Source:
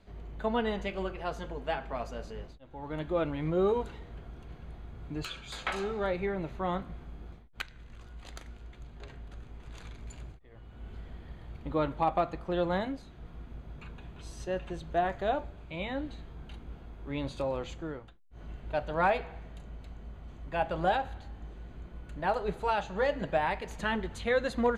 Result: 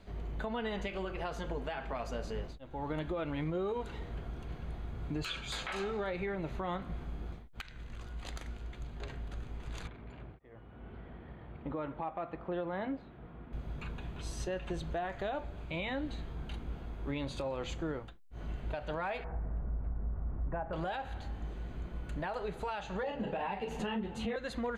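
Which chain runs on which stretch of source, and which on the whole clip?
9.87–13.53 HPF 180 Hz 6 dB/oct + air absorption 480 m
19.24–20.73 LPF 1500 Hz 24 dB/oct + low shelf 110 Hz +9 dB
23.03–24.36 doubler 36 ms -7.5 dB + small resonant body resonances 210/440/760/2700 Hz, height 14 dB, ringing for 20 ms + ensemble effect
whole clip: dynamic EQ 2400 Hz, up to +4 dB, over -43 dBFS, Q 0.72; compressor 6:1, threshold -35 dBFS; limiter -32 dBFS; gain +4 dB

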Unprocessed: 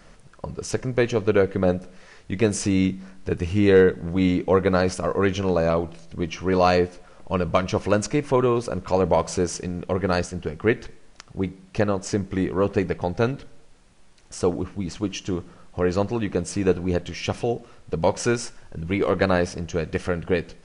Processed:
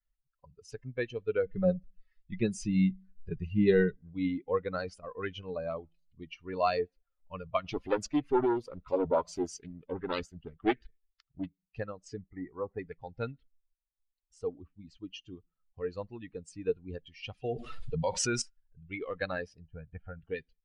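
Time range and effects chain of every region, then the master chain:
1.46–3.96 low shelf 210 Hz +7 dB + comb 5.4 ms, depth 43%
7.64–11.47 sample leveller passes 1 + Doppler distortion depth 0.72 ms
12.21–12.79 elliptic low-pass 2200 Hz + bell 780 Hz +5.5 dB 0.4 oct
17.44–18.42 high shelf 6100 Hz +4.5 dB + fast leveller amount 70%
19.67–20.19 LPF 1600 Hz + comb 1.3 ms, depth 51%
whole clip: per-bin expansion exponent 2; Bessel low-pass 6700 Hz; bell 78 Hz -4.5 dB 2.3 oct; gain -5.5 dB

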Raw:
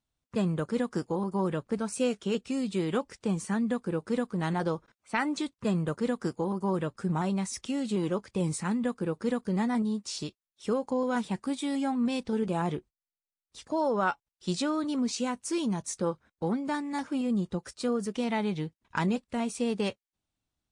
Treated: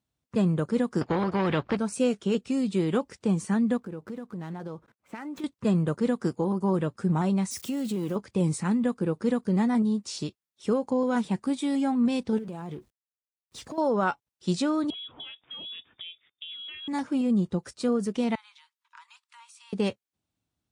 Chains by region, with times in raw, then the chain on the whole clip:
1.01–1.77 sample leveller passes 1 + air absorption 300 m + spectral compressor 2:1
3.77–5.44 median filter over 9 samples + compressor 4:1, threshold -39 dBFS
7.51–8.16 switching spikes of -37 dBFS + compressor 4:1, threshold -30 dBFS
12.38–13.78 G.711 law mismatch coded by mu + compressor, threshold -38 dBFS
14.9–16.88 compressor 12:1, threshold -37 dBFS + inverted band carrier 3600 Hz
18.35–19.73 rippled Chebyshev high-pass 900 Hz, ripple 3 dB + compressor 3:1, threshold -53 dBFS
whole clip: HPF 78 Hz; low shelf 490 Hz +5.5 dB

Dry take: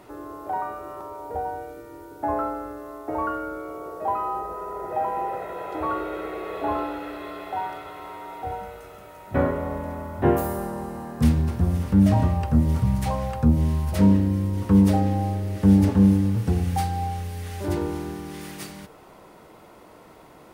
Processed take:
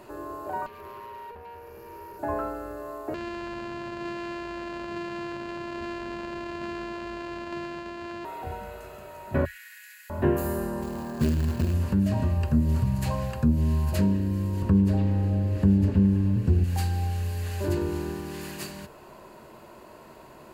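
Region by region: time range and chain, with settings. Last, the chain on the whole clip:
0.66–2.19 ripple EQ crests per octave 0.83, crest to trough 17 dB + compressor 16:1, threshold -34 dBFS + tube stage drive 39 dB, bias 0.65
3.14–8.25 sample sorter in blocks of 128 samples + compressor 5:1, threshold -32 dBFS + LPF 3400 Hz
9.45–10.1 Chebyshev high-pass 1600 Hz, order 6 + high shelf 2300 Hz +7.5 dB
10.82–11.74 LPF 3500 Hz 6 dB/oct + short-mantissa float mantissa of 2-bit + core saturation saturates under 240 Hz
14.62–16.64 tilt -2 dB/oct + delay with a stepping band-pass 0.104 s, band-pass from 2800 Hz, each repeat -0.7 oct, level -1.5 dB
whole clip: dynamic EQ 800 Hz, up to -6 dB, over -38 dBFS, Q 1.4; compressor 2:1, threshold -23 dBFS; ripple EQ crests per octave 1.4, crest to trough 7 dB

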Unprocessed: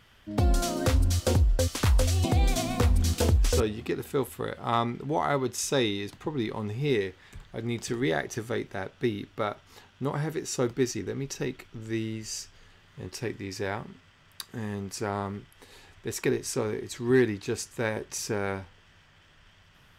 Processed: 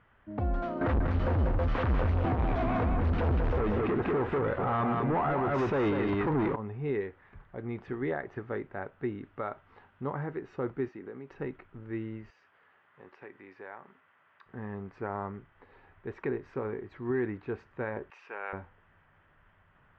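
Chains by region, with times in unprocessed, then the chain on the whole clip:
0.81–6.56 sample leveller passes 5 + echo 0.192 s -5 dB
9.24–10.14 LPF 7700 Hz + high shelf 4400 Hz +8 dB
10.88–11.31 HPF 200 Hz + compressor 2.5:1, threshold -35 dBFS
12.3–14.46 weighting filter A + compressor 2:1, threshold -41 dBFS
18.1–18.53 HPF 770 Hz + bell 2700 Hz +11.5 dB 0.35 oct
whole clip: Bessel low-pass 1100 Hz, order 4; tilt shelf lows -6 dB, about 870 Hz; limiter -22 dBFS

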